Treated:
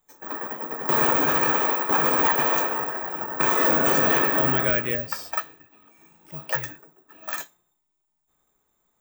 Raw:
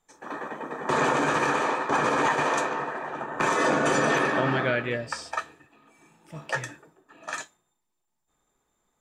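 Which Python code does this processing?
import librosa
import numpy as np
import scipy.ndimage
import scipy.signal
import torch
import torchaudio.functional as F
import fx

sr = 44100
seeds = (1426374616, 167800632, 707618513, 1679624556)

y = (np.kron(x[::2], np.eye(2)[0]) * 2)[:len(x)]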